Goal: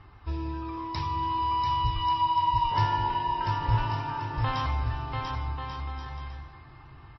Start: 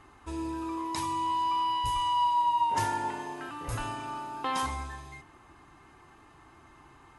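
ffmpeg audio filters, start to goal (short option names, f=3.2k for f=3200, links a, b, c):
-af "lowshelf=f=170:t=q:w=1.5:g=9.5,aecho=1:1:690|1138|1430|1620|1743:0.631|0.398|0.251|0.158|0.1" -ar 16000 -c:a libmp3lame -b:a 24k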